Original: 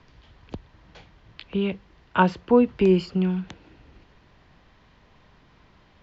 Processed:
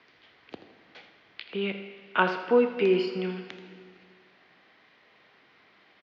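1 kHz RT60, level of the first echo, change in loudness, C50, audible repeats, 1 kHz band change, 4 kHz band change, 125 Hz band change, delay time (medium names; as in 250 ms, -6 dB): 1.8 s, -13.5 dB, -4.5 dB, 8.0 dB, 2, -4.0 dB, +1.0 dB, -12.0 dB, 81 ms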